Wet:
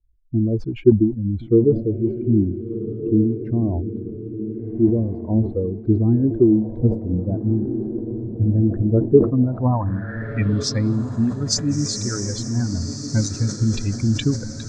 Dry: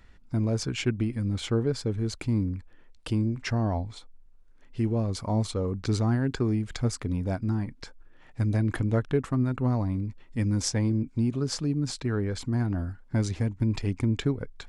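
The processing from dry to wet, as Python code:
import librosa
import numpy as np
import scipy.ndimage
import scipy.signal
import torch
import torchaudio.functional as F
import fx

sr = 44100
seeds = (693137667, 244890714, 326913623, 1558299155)

y = fx.bin_expand(x, sr, power=2.0)
y = fx.echo_diffused(y, sr, ms=1457, feedback_pct=51, wet_db=-9.0)
y = fx.filter_sweep_lowpass(y, sr, from_hz=370.0, to_hz=6500.0, start_s=9.18, end_s=11.01, q=3.5)
y = fx.sustainer(y, sr, db_per_s=130.0)
y = F.gain(torch.from_numpy(y), 9.0).numpy()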